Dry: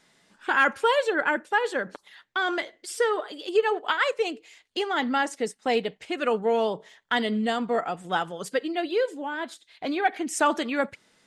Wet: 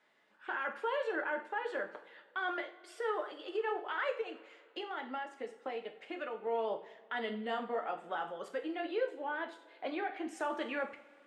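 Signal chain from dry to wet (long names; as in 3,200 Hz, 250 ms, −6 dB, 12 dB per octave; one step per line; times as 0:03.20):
three-way crossover with the lows and the highs turned down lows −16 dB, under 320 Hz, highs −18 dB, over 3,000 Hz
0:04.21–0:06.47: downward compressor, threshold −32 dBFS, peak gain reduction 11.5 dB
brickwall limiter −21.5 dBFS, peak gain reduction 11.5 dB
coupled-rooms reverb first 0.41 s, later 2.8 s, from −21 dB, DRR 3.5 dB
level −7 dB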